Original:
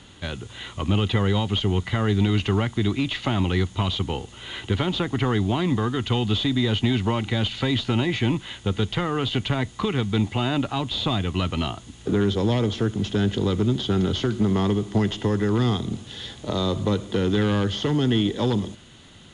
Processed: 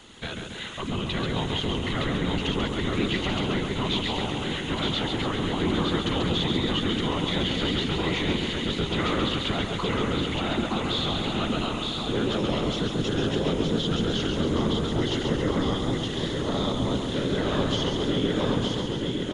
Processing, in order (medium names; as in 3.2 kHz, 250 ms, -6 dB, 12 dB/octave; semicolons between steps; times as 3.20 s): high-pass 170 Hz 6 dB/octave; peak limiter -20.5 dBFS, peak gain reduction 9 dB; whisper effect; on a send: feedback delay 917 ms, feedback 44%, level -3.5 dB; on the sum: modulated delay 136 ms, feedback 59%, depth 83 cents, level -5 dB